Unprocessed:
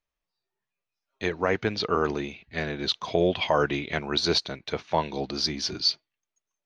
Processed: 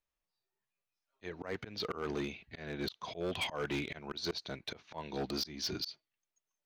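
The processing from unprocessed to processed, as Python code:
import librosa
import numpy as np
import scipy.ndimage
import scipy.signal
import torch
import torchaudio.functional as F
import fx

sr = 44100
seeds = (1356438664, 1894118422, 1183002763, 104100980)

y = fx.auto_swell(x, sr, attack_ms=277.0)
y = np.clip(10.0 ** (26.0 / 20.0) * y, -1.0, 1.0) / 10.0 ** (26.0 / 20.0)
y = y * librosa.db_to_amplitude(-4.0)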